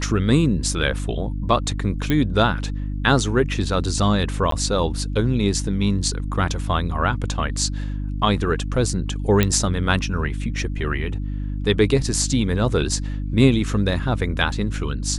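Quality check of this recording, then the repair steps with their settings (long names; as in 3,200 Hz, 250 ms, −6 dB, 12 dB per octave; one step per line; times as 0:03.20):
mains hum 50 Hz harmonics 6 −26 dBFS
0:02.10: click −9 dBFS
0:04.51–0:04.52: drop-out 13 ms
0:09.43: click −4 dBFS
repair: click removal
hum removal 50 Hz, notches 6
repair the gap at 0:04.51, 13 ms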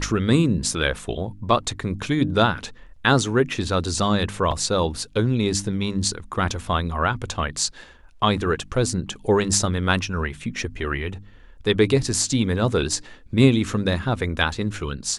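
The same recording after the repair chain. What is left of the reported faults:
none of them is left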